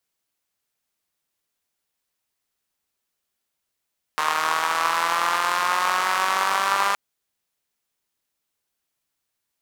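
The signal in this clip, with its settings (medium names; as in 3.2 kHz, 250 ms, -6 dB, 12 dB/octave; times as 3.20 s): four-cylinder engine model, changing speed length 2.77 s, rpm 4600, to 6000, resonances 1.1 kHz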